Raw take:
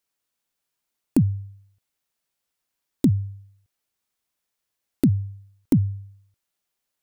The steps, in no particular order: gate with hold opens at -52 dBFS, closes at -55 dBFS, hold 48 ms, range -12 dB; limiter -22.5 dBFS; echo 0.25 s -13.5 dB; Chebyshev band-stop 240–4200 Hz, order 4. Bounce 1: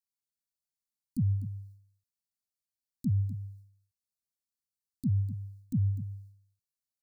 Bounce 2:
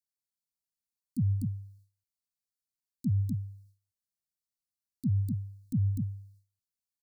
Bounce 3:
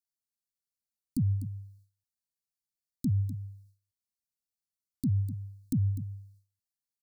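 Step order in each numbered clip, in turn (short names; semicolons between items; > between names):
limiter > Chebyshev band-stop > gate with hold > echo; echo > limiter > gate with hold > Chebyshev band-stop; Chebyshev band-stop > limiter > echo > gate with hold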